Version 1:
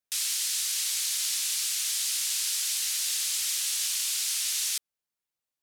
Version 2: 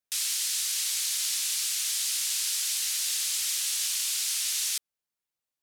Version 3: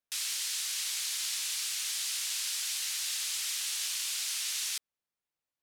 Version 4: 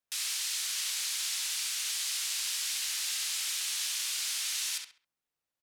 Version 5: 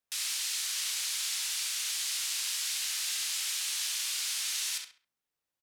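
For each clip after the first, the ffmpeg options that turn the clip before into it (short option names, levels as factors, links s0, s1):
-af anull
-af "highshelf=f=4300:g=-7.5"
-filter_complex "[0:a]asplit=2[s0][s1];[s1]adelay=67,lowpass=f=3600:p=1,volume=0.708,asplit=2[s2][s3];[s3]adelay=67,lowpass=f=3600:p=1,volume=0.34,asplit=2[s4][s5];[s5]adelay=67,lowpass=f=3600:p=1,volume=0.34,asplit=2[s6][s7];[s7]adelay=67,lowpass=f=3600:p=1,volume=0.34[s8];[s0][s2][s4][s6][s8]amix=inputs=5:normalize=0"
-filter_complex "[0:a]asplit=2[s0][s1];[s1]adelay=37,volume=0.211[s2];[s0][s2]amix=inputs=2:normalize=0"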